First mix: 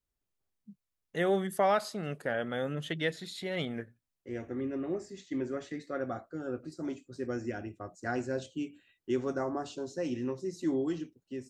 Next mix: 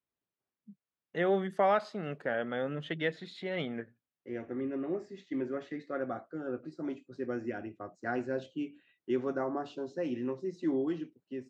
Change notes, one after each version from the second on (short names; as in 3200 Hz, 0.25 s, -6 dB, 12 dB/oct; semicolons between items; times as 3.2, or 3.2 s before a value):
master: add BPF 150–3100 Hz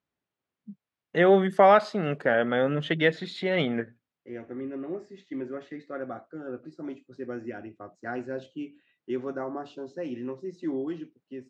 first voice +9.5 dB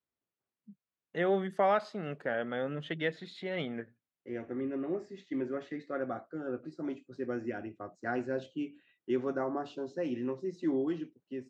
first voice -10.0 dB